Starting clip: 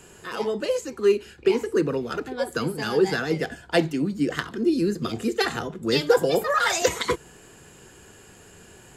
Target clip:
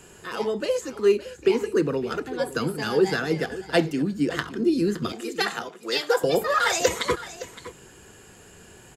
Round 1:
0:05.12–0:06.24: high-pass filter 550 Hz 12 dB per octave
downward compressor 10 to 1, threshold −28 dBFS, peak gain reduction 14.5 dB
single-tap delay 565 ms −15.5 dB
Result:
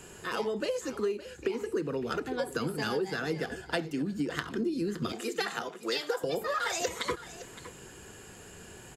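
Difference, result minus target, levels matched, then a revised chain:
downward compressor: peak gain reduction +14.5 dB
0:05.12–0:06.24: high-pass filter 550 Hz 12 dB per octave
single-tap delay 565 ms −15.5 dB

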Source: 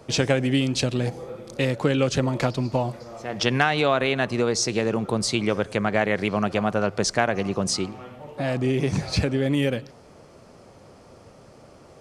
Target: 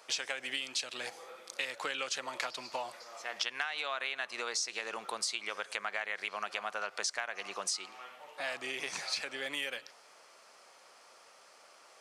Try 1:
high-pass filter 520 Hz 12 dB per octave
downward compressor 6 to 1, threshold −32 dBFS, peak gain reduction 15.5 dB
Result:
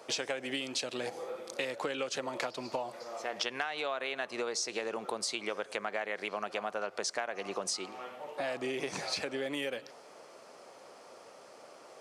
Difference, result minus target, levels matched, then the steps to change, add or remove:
500 Hz band +7.5 dB
change: high-pass filter 1,200 Hz 12 dB per octave

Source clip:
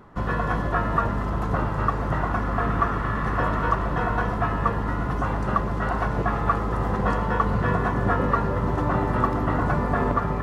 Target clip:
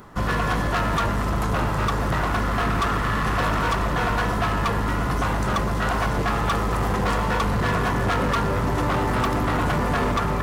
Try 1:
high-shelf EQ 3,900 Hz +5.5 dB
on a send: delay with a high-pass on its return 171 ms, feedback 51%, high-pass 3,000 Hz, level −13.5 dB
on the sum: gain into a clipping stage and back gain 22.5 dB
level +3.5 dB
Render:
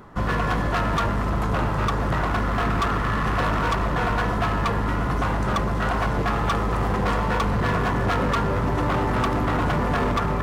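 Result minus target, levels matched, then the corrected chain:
8,000 Hz band −4.5 dB
high-shelf EQ 3,900 Hz +15.5 dB
on a send: delay with a high-pass on its return 171 ms, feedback 51%, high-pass 3,000 Hz, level −13.5 dB
on the sum: gain into a clipping stage and back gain 22.5 dB
level +3.5 dB

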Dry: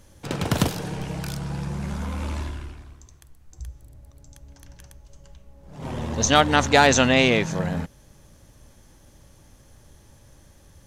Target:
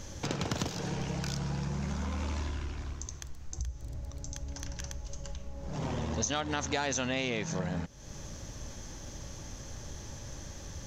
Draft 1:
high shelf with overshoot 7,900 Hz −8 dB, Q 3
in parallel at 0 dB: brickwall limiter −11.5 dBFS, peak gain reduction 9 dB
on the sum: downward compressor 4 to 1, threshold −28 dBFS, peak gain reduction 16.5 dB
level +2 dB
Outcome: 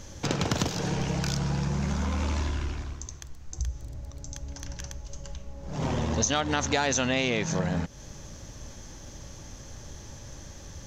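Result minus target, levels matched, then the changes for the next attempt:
downward compressor: peak gain reduction −6 dB
change: downward compressor 4 to 1, threshold −36 dBFS, peak gain reduction 22.5 dB

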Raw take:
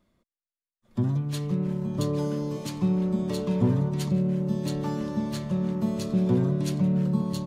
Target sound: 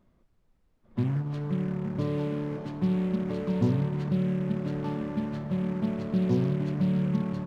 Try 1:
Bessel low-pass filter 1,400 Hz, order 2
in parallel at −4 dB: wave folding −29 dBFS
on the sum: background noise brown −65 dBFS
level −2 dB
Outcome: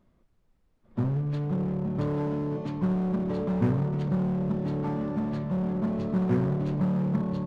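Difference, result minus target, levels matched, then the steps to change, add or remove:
wave folding: distortion −29 dB
change: wave folding −38.5 dBFS

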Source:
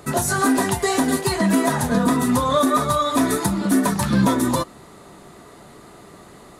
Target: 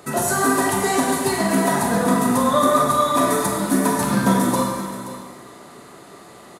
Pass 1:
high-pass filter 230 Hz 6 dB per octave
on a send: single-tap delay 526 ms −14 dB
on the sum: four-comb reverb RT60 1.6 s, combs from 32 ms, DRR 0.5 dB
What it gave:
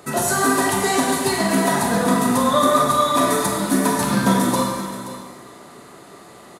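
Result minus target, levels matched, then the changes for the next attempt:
4,000 Hz band +3.5 dB
add after high-pass filter: dynamic equaliser 3,800 Hz, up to −4 dB, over −39 dBFS, Q 0.81

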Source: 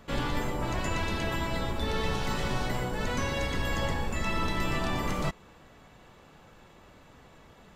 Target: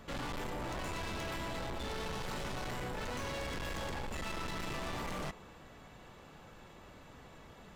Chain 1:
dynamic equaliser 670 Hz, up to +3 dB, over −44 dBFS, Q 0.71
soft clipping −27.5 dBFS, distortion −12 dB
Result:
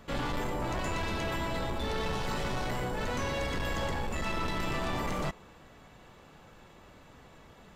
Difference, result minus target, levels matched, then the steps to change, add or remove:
soft clipping: distortion −6 dB
change: soft clipping −37.5 dBFS, distortion −6 dB

